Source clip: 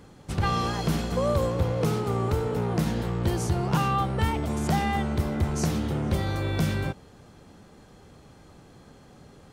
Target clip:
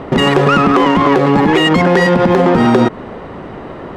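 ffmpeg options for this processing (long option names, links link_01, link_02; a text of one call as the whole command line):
ffmpeg -i in.wav -filter_complex "[0:a]asplit=2[link_01][link_02];[link_02]acompressor=threshold=-37dB:ratio=6,volume=2dB[link_03];[link_01][link_03]amix=inputs=2:normalize=0,asetrate=105840,aresample=44100,adynamicsmooth=sensitivity=1:basefreq=1800,alimiter=level_in=17.5dB:limit=-1dB:release=50:level=0:latency=1,volume=-1dB" out.wav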